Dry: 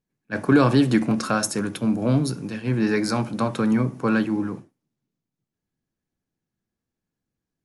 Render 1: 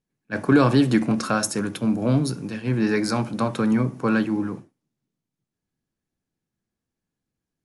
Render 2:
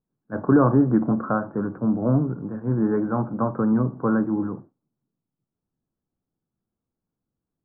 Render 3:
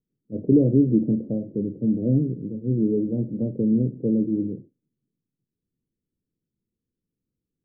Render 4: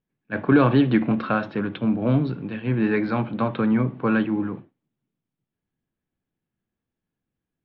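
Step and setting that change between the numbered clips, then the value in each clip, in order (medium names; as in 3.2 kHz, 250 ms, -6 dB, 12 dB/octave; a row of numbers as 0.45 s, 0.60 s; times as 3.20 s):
steep low-pass, frequency: 12 kHz, 1.4 kHz, 510 Hz, 3.6 kHz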